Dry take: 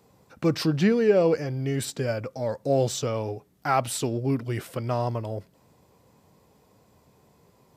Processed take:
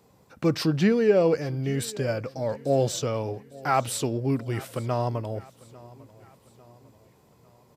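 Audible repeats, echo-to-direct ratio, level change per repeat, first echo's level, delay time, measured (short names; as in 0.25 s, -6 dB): 3, -20.5 dB, -6.0 dB, -21.5 dB, 0.849 s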